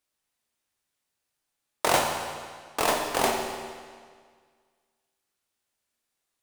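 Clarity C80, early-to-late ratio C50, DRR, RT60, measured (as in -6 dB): 5.0 dB, 4.0 dB, 2.0 dB, 1.8 s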